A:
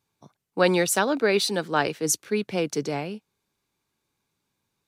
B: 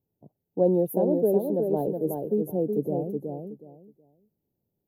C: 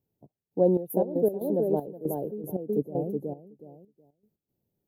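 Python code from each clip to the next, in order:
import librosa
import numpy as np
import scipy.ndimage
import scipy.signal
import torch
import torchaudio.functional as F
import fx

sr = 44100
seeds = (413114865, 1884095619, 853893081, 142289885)

y1 = scipy.signal.sosfilt(scipy.signal.cheby2(4, 40, [1200.0, 8500.0], 'bandstop', fs=sr, output='sos'), x)
y1 = fx.echo_feedback(y1, sr, ms=370, feedback_pct=21, wet_db=-4.5)
y2 = fx.step_gate(y1, sr, bpm=117, pattern='xx..xx.x.x.x', floor_db=-12.0, edge_ms=4.5)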